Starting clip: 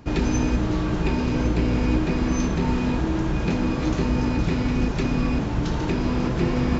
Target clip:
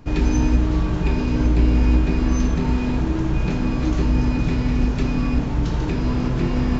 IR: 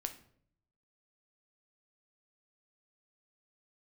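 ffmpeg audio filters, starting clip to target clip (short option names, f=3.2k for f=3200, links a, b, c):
-filter_complex "[0:a]lowshelf=f=80:g=7.5[a];[1:a]atrim=start_sample=2205[b];[a][b]afir=irnorm=-1:irlink=0"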